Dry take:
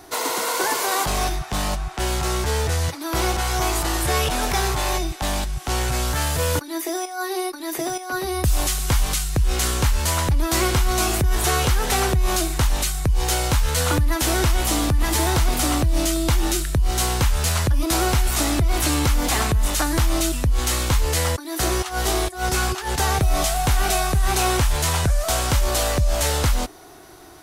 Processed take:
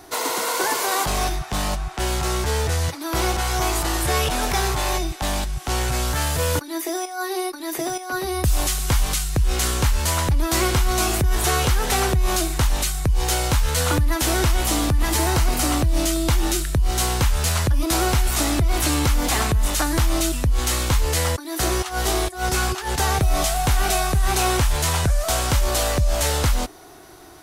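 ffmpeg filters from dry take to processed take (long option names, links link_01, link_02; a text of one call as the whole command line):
ffmpeg -i in.wav -filter_complex "[0:a]asettb=1/sr,asplit=3[link_01][link_02][link_03];[link_01]atrim=end=15.174[link_04];[link_02]atrim=start=15.17:end=15.72,asetpts=PTS-STARTPTS,afade=type=in:duration=0.004:curve=qsin,afade=type=out:start_time=0.546:duration=0.004:curve=qsin,bandreject=frequency=3500:width=12[link_05];[link_03]atrim=start=15.716[link_06];[link_04][link_05]acrossfade=duration=0.004:curve1=hsin:curve2=qsin[link_07];[link_07][link_06]acrossfade=duration=0.004:curve1=qsin:curve2=hsin" out.wav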